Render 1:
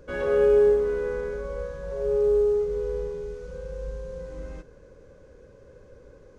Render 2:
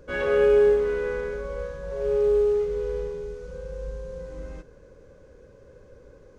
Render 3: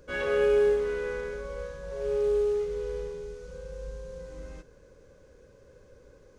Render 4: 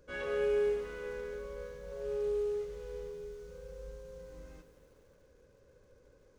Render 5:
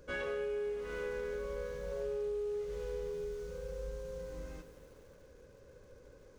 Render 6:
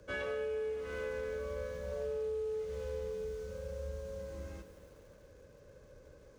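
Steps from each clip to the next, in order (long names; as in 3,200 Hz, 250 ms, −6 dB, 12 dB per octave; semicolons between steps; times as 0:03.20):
dynamic equaliser 2,500 Hz, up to +8 dB, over −46 dBFS, Q 0.8
high-shelf EQ 2,400 Hz +7.5 dB; level −5 dB
feedback echo at a low word length 145 ms, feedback 80%, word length 9 bits, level −13.5 dB; level −8 dB
downward compressor 12 to 1, threshold −40 dBFS, peak gain reduction 13 dB; level +5.5 dB
frequency shifter +21 Hz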